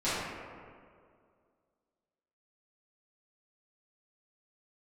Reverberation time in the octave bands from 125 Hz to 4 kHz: 2.1, 2.2, 2.3, 2.0, 1.6, 1.1 s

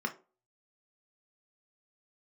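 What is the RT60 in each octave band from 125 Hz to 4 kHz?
0.30, 0.35, 0.40, 0.30, 0.25, 0.20 s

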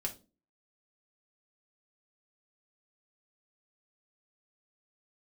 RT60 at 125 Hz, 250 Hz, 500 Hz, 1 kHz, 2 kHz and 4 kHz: 0.40, 0.50, 0.35, 0.25, 0.20, 0.25 s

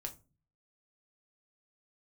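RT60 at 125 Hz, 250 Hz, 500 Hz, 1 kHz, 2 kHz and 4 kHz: 0.70, 0.55, 0.35, 0.25, 0.20, 0.20 s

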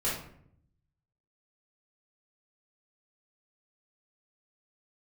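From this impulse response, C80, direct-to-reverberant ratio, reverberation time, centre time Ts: 8.0 dB, -9.5 dB, 0.65 s, 45 ms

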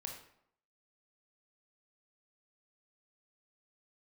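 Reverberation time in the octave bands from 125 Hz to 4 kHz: 0.65, 0.75, 0.70, 0.70, 0.60, 0.50 s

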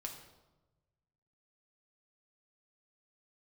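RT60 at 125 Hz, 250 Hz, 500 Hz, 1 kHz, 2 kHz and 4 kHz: 1.8, 1.3, 1.2, 1.0, 0.75, 0.75 s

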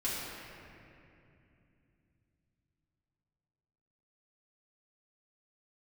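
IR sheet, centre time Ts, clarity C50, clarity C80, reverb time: 0.16 s, -2.0 dB, -0.5 dB, 2.7 s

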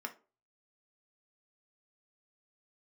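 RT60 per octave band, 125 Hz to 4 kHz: 0.50, 0.35, 0.40, 0.30, 0.25, 0.20 s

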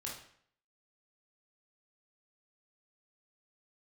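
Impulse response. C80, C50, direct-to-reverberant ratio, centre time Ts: 9.0 dB, 4.0 dB, -3.5 dB, 38 ms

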